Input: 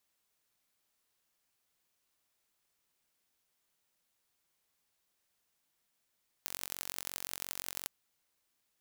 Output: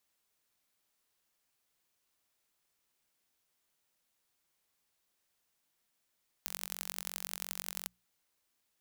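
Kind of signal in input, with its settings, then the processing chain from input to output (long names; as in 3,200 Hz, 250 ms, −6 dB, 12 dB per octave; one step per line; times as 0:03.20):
impulse train 45.7 per second, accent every 4, −8.5 dBFS 1.41 s
mains-hum notches 60/120/180 Hz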